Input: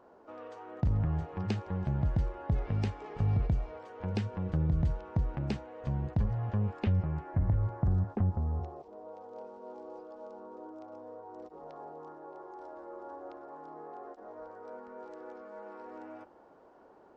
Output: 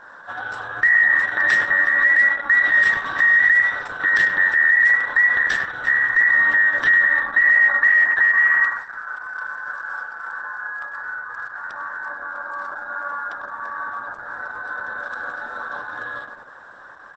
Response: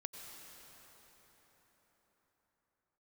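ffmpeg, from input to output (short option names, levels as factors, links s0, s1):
-filter_complex "[0:a]afftfilt=real='real(if(between(b,1,1012),(2*floor((b-1)/92)+1)*92-b,b),0)':imag='imag(if(between(b,1,1012),(2*floor((b-1)/92)+1)*92-b,b),0)*if(between(b,1,1012),-1,1)':win_size=2048:overlap=0.75,bandreject=f=1300:w=5.8,bandreject=f=80.14:t=h:w=4,bandreject=f=160.28:t=h:w=4,bandreject=f=240.42:t=h:w=4,bandreject=f=320.56:t=h:w=4,bandreject=f=400.7:t=h:w=4,bandreject=f=480.84:t=h:w=4,bandreject=f=560.98:t=h:w=4,bandreject=f=641.12:t=h:w=4,bandreject=f=721.26:t=h:w=4,bandreject=f=801.4:t=h:w=4,bandreject=f=881.54:t=h:w=4,bandreject=f=961.68:t=h:w=4,bandreject=f=1041.82:t=h:w=4,bandreject=f=1121.96:t=h:w=4,bandreject=f=1202.1:t=h:w=4,bandreject=f=1282.24:t=h:w=4,bandreject=f=1362.38:t=h:w=4,bandreject=f=1442.52:t=h:w=4,bandreject=f=1522.66:t=h:w=4,bandreject=f=1602.8:t=h:w=4,bandreject=f=1682.94:t=h:w=4,bandreject=f=1763.08:t=h:w=4,bandreject=f=1843.22:t=h:w=4,bandreject=f=1923.36:t=h:w=4,bandreject=f=2003.5:t=h:w=4,bandreject=f=2083.64:t=h:w=4,bandreject=f=2163.78:t=h:w=4,bandreject=f=2243.92:t=h:w=4,bandreject=f=2324.06:t=h:w=4,bandreject=f=2404.2:t=h:w=4,bandreject=f=2484.34:t=h:w=4,asplit=2[s0][s1];[s1]adelay=99,lowpass=f=1300:p=1,volume=0.501,asplit=2[s2][s3];[s3]adelay=99,lowpass=f=1300:p=1,volume=0.5,asplit=2[s4][s5];[s5]adelay=99,lowpass=f=1300:p=1,volume=0.5,asplit=2[s6][s7];[s7]adelay=99,lowpass=f=1300:p=1,volume=0.5,asplit=2[s8][s9];[s9]adelay=99,lowpass=f=1300:p=1,volume=0.5,asplit=2[s10][s11];[s11]adelay=99,lowpass=f=1300:p=1,volume=0.5[s12];[s2][s4][s6][s8][s10][s12]amix=inputs=6:normalize=0[s13];[s0][s13]amix=inputs=2:normalize=0,alimiter=level_in=20:limit=0.891:release=50:level=0:latency=1,volume=0.422" -ar 48000 -c:a libopus -b:a 10k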